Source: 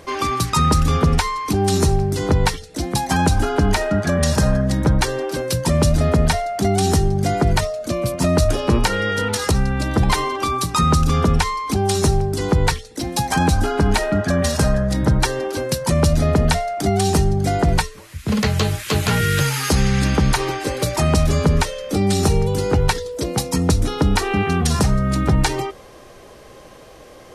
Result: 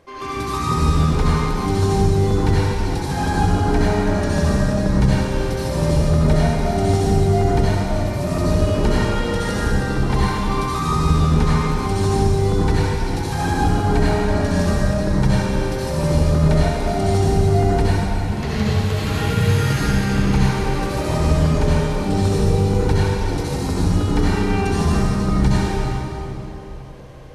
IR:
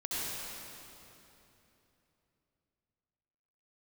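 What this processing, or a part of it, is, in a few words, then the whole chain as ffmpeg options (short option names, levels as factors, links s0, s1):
swimming-pool hall: -filter_complex "[1:a]atrim=start_sample=2205[s0];[0:a][s0]afir=irnorm=-1:irlink=0,highshelf=f=4100:g=-7.5,volume=0.473"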